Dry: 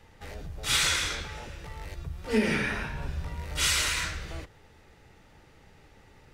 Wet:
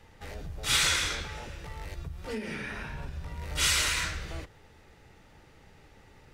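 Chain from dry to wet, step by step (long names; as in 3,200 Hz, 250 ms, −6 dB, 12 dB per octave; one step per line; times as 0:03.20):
0:02.06–0:03.42: downward compressor 5 to 1, threshold −34 dBFS, peak gain reduction 13.5 dB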